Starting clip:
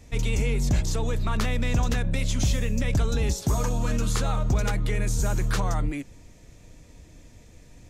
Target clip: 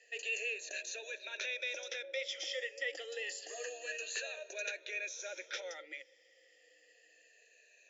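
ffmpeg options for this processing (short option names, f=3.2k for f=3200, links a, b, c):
-filter_complex "[0:a]afftfilt=real='re*pow(10,14/40*sin(2*PI*(1.5*log(max(b,1)*sr/1024/100)/log(2)-(-0.28)*(pts-256)/sr)))':imag='im*pow(10,14/40*sin(2*PI*(1.5*log(max(b,1)*sr/1024/100)/log(2)-(-0.28)*(pts-256)/sr)))':win_size=1024:overlap=0.75,afftfilt=real='re*between(b*sr/4096,300,7400)':imag='im*between(b*sr/4096,300,7400)':win_size=4096:overlap=0.75,asplit=3[a][b][c];[a]bandpass=f=530:t=q:w=8,volume=0dB[d];[b]bandpass=f=1.84k:t=q:w=8,volume=-6dB[e];[c]bandpass=f=2.48k:t=q:w=8,volume=-9dB[f];[d][e][f]amix=inputs=3:normalize=0,aderivative,volume=16dB"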